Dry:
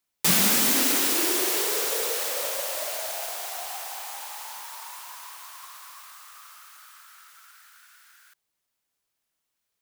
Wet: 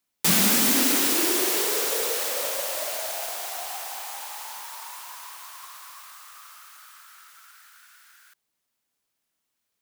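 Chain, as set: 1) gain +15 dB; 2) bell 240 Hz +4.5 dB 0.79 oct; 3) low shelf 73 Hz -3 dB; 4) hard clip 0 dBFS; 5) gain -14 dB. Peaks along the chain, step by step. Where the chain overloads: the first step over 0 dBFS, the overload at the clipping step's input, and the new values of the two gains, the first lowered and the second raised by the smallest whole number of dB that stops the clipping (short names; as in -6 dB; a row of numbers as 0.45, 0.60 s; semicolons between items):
+7.5, +8.0, +8.0, 0.0, -14.0 dBFS; step 1, 8.0 dB; step 1 +7 dB, step 5 -6 dB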